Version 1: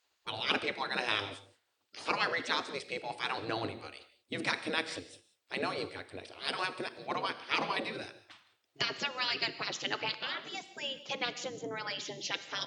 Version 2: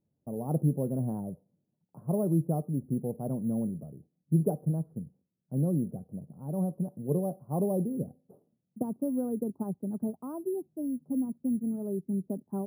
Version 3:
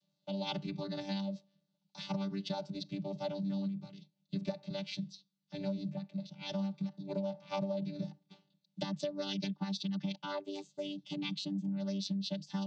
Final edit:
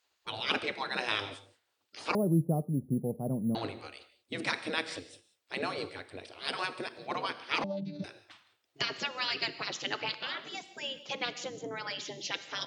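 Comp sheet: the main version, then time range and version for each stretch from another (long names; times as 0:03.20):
1
0:02.15–0:03.55: punch in from 2
0:07.64–0:08.04: punch in from 3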